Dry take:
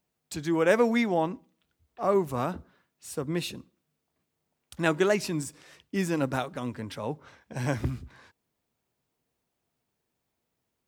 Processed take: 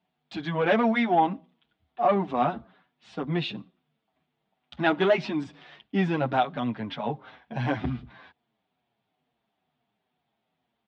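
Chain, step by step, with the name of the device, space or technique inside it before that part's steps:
barber-pole flanger into a guitar amplifier (barber-pole flanger 7.3 ms −2.2 Hz; soft clipping −20.5 dBFS, distortion −16 dB; loudspeaker in its box 92–3,600 Hz, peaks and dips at 95 Hz −9 dB, 220 Hz +3 dB, 350 Hz −3 dB, 500 Hz −5 dB, 740 Hz +8 dB, 3,400 Hz +6 dB)
level +6.5 dB

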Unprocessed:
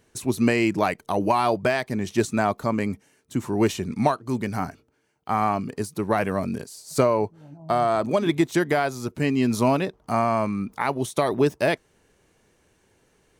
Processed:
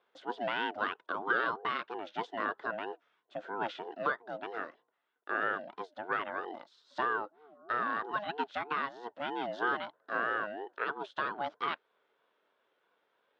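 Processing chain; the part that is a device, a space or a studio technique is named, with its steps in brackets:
voice changer toy (ring modulator whose carrier an LFO sweeps 510 Hz, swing 20%, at 3.1 Hz; loudspeaker in its box 430–3,600 Hz, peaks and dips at 440 Hz +5 dB, 800 Hz −5 dB, 1,500 Hz +8 dB, 2,300 Hz −4 dB, 3,500 Hz +5 dB)
level −8 dB

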